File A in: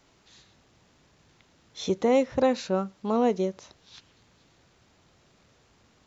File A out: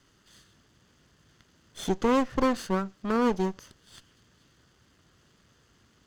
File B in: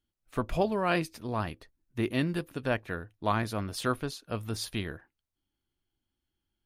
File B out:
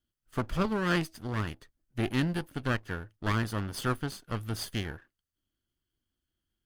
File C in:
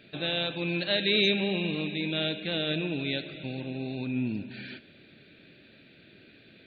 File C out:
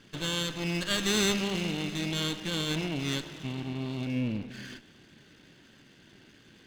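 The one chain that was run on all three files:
lower of the sound and its delayed copy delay 0.63 ms

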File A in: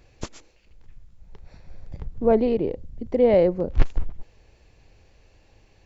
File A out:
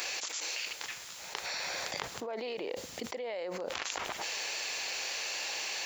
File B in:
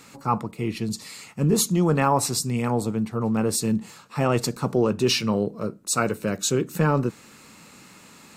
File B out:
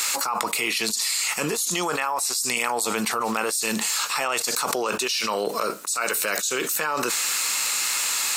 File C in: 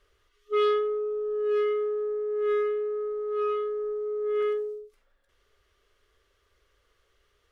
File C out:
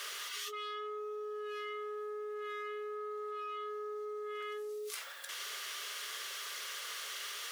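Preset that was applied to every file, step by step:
high-pass filter 860 Hz 12 dB per octave
high-shelf EQ 2,900 Hz +12 dB
envelope flattener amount 100%
level −15 dB

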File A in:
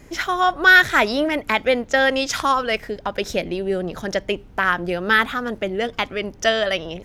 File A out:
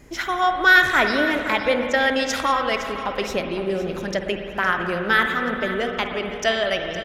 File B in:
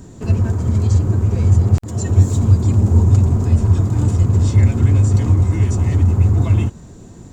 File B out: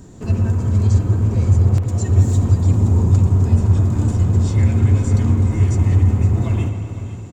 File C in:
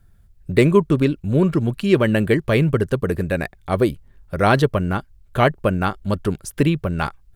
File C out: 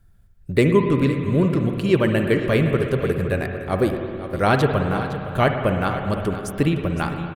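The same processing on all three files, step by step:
single-tap delay 512 ms −13 dB
spring reverb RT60 2.7 s, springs 53/57 ms, chirp 65 ms, DRR 4.5 dB
level −2.5 dB

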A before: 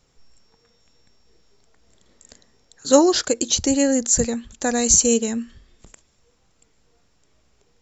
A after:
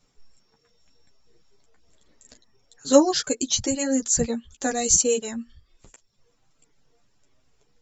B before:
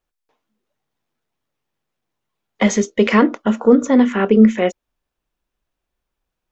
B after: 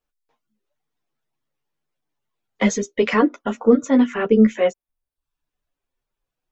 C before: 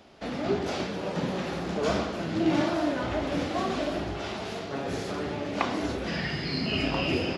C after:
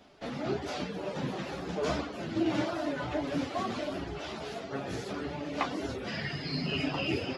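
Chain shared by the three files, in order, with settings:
reverb reduction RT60 0.6 s
multi-voice chorus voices 4, 0.28 Hz, delay 11 ms, depth 4.3 ms

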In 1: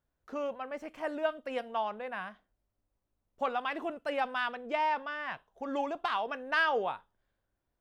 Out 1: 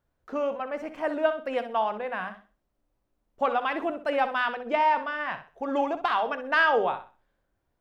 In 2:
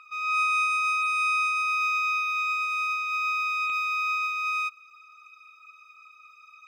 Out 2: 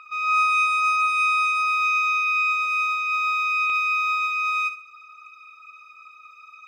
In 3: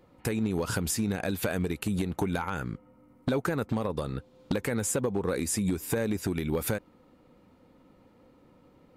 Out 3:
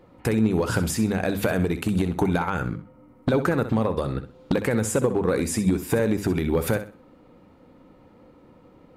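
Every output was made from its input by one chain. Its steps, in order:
high-shelf EQ 3,300 Hz −7.5 dB
mains-hum notches 50/100/150/200/250 Hz
on a send: flutter between parallel walls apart 10.9 metres, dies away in 0.34 s
on the sum: level +7 dB

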